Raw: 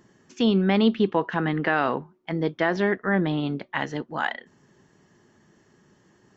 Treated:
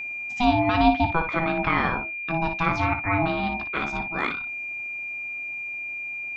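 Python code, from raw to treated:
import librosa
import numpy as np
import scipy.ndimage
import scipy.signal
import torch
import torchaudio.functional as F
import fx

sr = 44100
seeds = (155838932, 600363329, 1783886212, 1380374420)

y = fx.room_early_taps(x, sr, ms=(18, 58), db=(-11.0, -9.0))
y = y * np.sin(2.0 * np.pi * 490.0 * np.arange(len(y)) / sr)
y = y + 10.0 ** (-32.0 / 20.0) * np.sin(2.0 * np.pi * 2400.0 * np.arange(len(y)) / sr)
y = F.gain(torch.from_numpy(y), 2.0).numpy()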